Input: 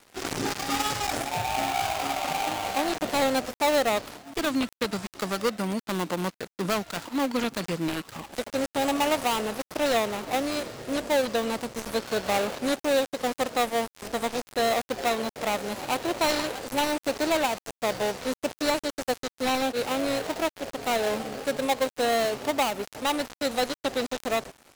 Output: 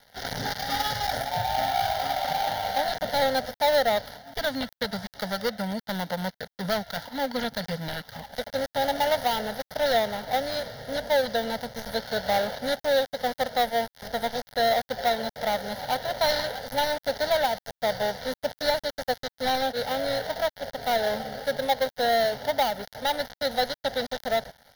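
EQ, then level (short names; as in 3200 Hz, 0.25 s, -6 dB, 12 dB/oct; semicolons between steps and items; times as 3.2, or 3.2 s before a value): fixed phaser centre 1700 Hz, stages 8; +3.0 dB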